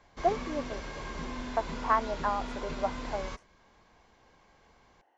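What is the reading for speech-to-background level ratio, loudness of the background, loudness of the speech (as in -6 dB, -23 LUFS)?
6.0 dB, -39.5 LUFS, -33.5 LUFS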